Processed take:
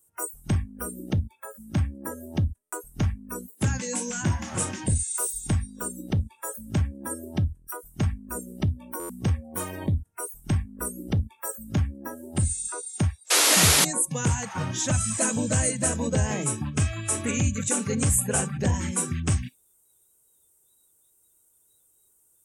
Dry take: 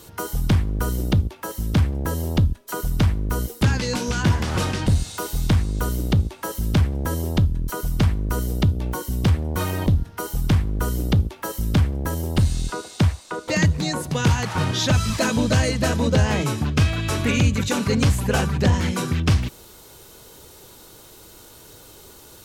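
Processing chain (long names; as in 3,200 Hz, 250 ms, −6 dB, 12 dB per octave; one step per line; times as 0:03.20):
high shelf with overshoot 6,300 Hz +13.5 dB, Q 3
sound drawn into the spectrogram noise, 0:13.30–0:13.85, 240–12,000 Hz −13 dBFS
noise reduction from a noise print of the clip's start 26 dB
buffer that repeats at 0:02.62/0:08.99, samples 512, times 8
level −6 dB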